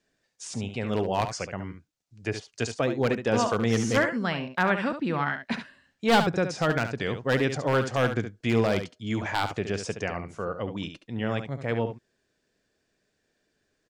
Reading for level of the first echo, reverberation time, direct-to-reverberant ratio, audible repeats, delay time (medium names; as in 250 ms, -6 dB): -9.0 dB, no reverb, no reverb, 1, 70 ms